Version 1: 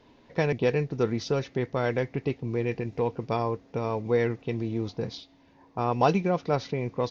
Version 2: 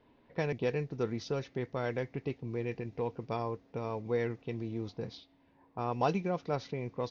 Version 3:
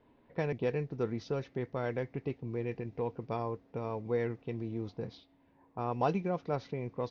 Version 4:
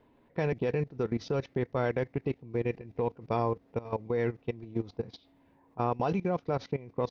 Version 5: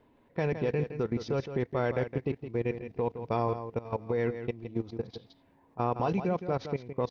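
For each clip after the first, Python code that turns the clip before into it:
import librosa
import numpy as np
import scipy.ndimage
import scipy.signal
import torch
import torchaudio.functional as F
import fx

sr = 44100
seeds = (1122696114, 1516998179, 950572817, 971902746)

y1 = fx.env_lowpass(x, sr, base_hz=2900.0, full_db=-21.5)
y1 = y1 * librosa.db_to_amplitude(-7.5)
y2 = fx.high_shelf(y1, sr, hz=3500.0, db=-9.5)
y3 = fx.level_steps(y2, sr, step_db=18)
y3 = y3 * librosa.db_to_amplitude(8.0)
y4 = y3 + 10.0 ** (-10.0 / 20.0) * np.pad(y3, (int(165 * sr / 1000.0), 0))[:len(y3)]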